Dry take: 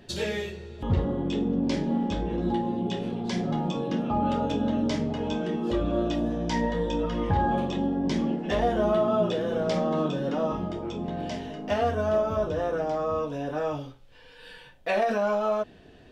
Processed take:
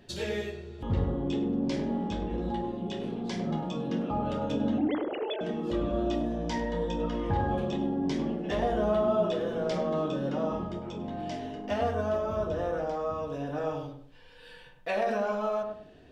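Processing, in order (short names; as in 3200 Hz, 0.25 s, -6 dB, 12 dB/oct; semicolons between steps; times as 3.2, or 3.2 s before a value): 4.78–5.41 sine-wave speech; on a send: darkening echo 0.1 s, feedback 35%, low-pass 940 Hz, level -3 dB; on the sum: gain -4.5 dB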